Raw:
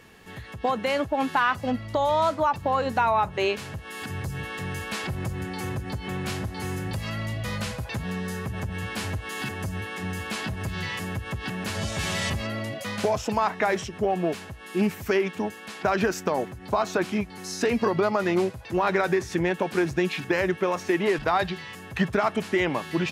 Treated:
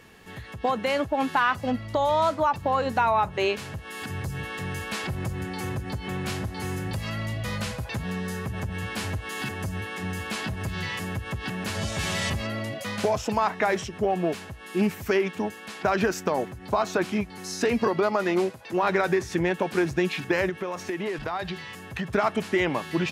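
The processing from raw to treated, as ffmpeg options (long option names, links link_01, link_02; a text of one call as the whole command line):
ffmpeg -i in.wav -filter_complex "[0:a]asettb=1/sr,asplit=3[link_01][link_02][link_03];[link_01]atrim=end=17.874[link_04];[link_02]atrim=start=17.87:end=18.83,asetpts=PTS-STARTPTS,afade=type=in:duration=0.004:curve=qsin,afade=type=out:start_time=0.956:duration=0.004:curve=qsin,highpass=190[link_05];[link_03]atrim=start=18.826[link_06];[link_04][link_05]acrossfade=duration=0.004:curve1=hsin:curve2=qsin[link_07];[link_07][link_06]acrossfade=duration=0.004:curve1=qsin:curve2=hsin,asettb=1/sr,asplit=3[link_08][link_09][link_10];[link_08]atrim=end=20.494[link_11];[link_09]atrim=start=20.49:end=22.1,asetpts=PTS-STARTPTS,afade=type=in:duration=0.004:curve=qsin,afade=type=out:start_time=1.606:duration=0.004:curve=qsin,acompressor=threshold=-28dB:ratio=3:attack=3.2:release=140:knee=1:detection=peak[link_12];[link_10]atrim=start=22.096[link_13];[link_11][link_12]acrossfade=duration=0.004:curve1=hsin:curve2=qsin[link_14];[link_14][link_13]acrossfade=duration=0.004:curve1=qsin:curve2=hsin" out.wav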